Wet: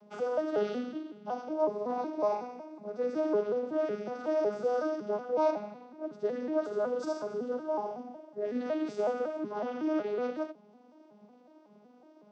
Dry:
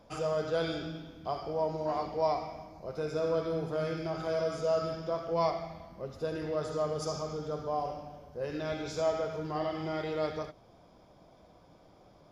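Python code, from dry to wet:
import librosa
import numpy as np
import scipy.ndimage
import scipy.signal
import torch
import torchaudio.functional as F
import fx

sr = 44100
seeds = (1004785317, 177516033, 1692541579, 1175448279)

y = fx.vocoder_arp(x, sr, chord='minor triad', root=56, every_ms=185)
y = F.gain(torch.from_numpy(y), 2.0).numpy()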